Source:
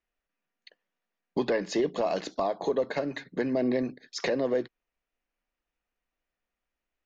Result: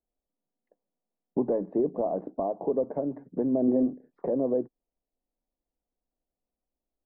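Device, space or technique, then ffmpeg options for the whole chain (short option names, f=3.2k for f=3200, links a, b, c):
under water: -filter_complex "[0:a]lowpass=f=800:w=0.5412,lowpass=f=800:w=1.3066,equalizer=f=260:t=o:w=0.41:g=4,asettb=1/sr,asplit=3[a][b][c];[a]atrim=end=3.654[d];[b]atrim=start=3.65:end=4.22,asetpts=PTS-STARTPTS,afade=t=in:d=0.004:c=qsin,afade=t=out:st=0.566:d=0.004:c=qsin,asplit=2[e][f];[f]adelay=27,volume=-5.5dB[g];[e][g]amix=inputs=2:normalize=0,atrim=end_sample=25137[h];[c]atrim=start=4.216[i];[d][h]acrossfade=d=0.004:c1=hsin:c2=qsin[j];[j][i]acrossfade=d=0.004:c1=qsin:c2=hsin"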